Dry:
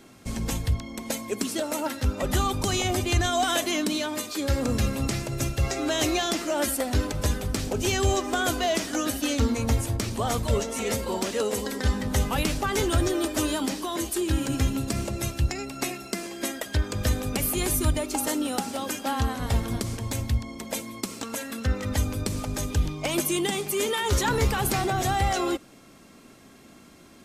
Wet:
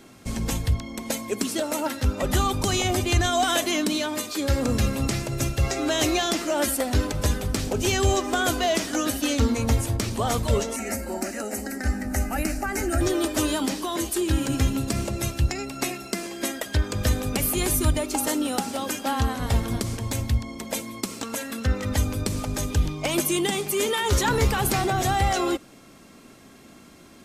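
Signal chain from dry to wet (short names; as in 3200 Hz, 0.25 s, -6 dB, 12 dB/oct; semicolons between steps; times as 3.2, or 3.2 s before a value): 10.76–13.01 fixed phaser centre 690 Hz, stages 8; gain +2 dB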